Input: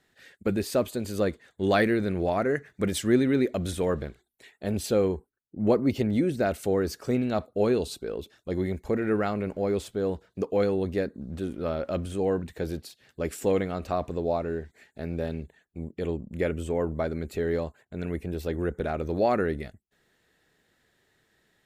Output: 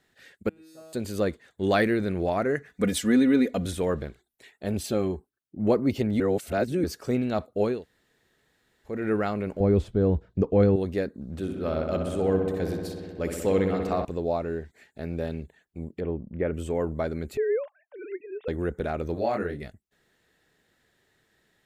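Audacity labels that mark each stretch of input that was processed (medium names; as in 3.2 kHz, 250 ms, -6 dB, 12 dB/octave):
0.490000	0.930000	feedback comb 160 Hz, decay 1.8 s, mix 100%
2.680000	3.660000	comb 4.1 ms, depth 74%
4.830000	5.600000	comb of notches 480 Hz
6.200000	6.840000	reverse
7.740000	8.940000	room tone, crossfade 0.24 s
9.600000	10.760000	RIAA curve playback
11.320000	14.050000	filtered feedback delay 63 ms, feedback 84%, low-pass 4.5 kHz, level -7 dB
16.000000	16.540000	Bessel low-pass 1.6 kHz, order 4
17.370000	18.480000	formants replaced by sine waves
19.140000	19.610000	detune thickener each way 42 cents -> 25 cents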